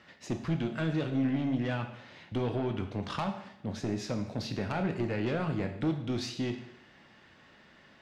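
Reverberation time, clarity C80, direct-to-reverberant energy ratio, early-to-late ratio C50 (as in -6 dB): 0.80 s, 11.0 dB, 5.0 dB, 9.0 dB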